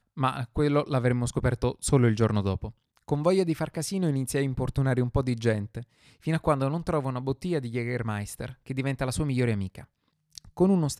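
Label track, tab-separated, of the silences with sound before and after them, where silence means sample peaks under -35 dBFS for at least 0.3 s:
2.690000	3.080000	silence
5.820000	6.270000	silence
9.810000	10.350000	silence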